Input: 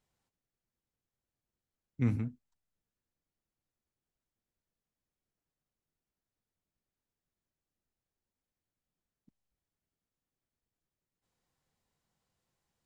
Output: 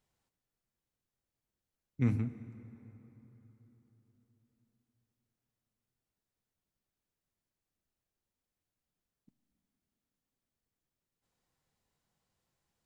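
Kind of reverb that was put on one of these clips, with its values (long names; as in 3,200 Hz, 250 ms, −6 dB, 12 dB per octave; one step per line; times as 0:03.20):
dense smooth reverb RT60 4.2 s, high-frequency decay 0.6×, DRR 12.5 dB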